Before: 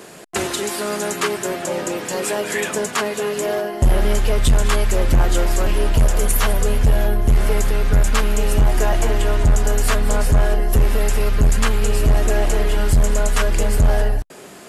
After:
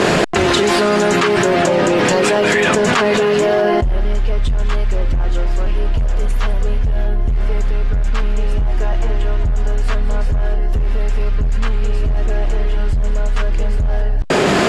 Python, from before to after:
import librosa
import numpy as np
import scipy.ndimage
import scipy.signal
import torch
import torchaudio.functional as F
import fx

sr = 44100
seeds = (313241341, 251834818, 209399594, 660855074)

y = scipy.signal.sosfilt(scipy.signal.butter(2, 4300.0, 'lowpass', fs=sr, output='sos'), x)
y = fx.low_shelf(y, sr, hz=99.0, db=7.0)
y = fx.env_flatten(y, sr, amount_pct=100)
y = F.gain(torch.from_numpy(y), -9.5).numpy()